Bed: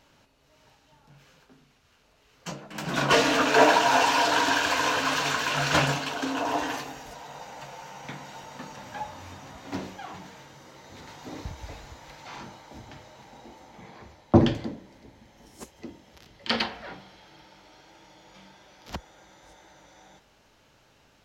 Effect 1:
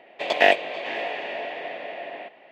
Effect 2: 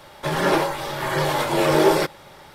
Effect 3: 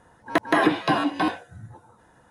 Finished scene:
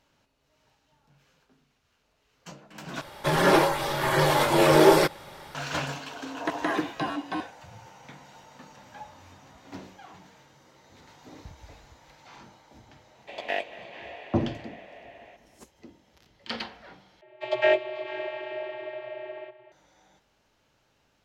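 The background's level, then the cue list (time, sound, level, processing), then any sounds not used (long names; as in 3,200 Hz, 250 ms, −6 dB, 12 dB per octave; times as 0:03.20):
bed −8 dB
0:03.01: overwrite with 2
0:06.12: mix in 3 −8.5 dB + downsampling to 22,050 Hz
0:13.08: mix in 1 −13 dB + single-tap delay 231 ms −19 dB
0:17.21: overwrite with 1 −3 dB + channel vocoder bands 32, square 124 Hz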